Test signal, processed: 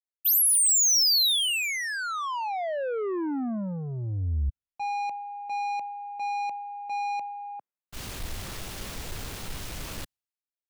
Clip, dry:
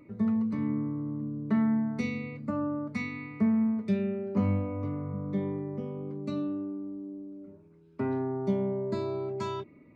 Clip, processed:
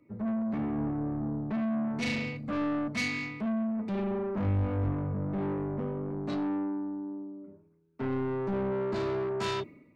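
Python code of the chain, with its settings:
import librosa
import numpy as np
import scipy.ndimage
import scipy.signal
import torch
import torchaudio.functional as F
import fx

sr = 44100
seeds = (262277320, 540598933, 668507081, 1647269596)

p1 = fx.high_shelf(x, sr, hz=4000.0, db=-4.5)
p2 = fx.over_compress(p1, sr, threshold_db=-32.0, ratio=-1.0)
p3 = p1 + (p2 * librosa.db_to_amplitude(-2.0))
p4 = 10.0 ** (-30.5 / 20.0) * np.tanh(p3 / 10.0 ** (-30.5 / 20.0))
p5 = fx.band_widen(p4, sr, depth_pct=100)
y = p5 * librosa.db_to_amplitude(2.0)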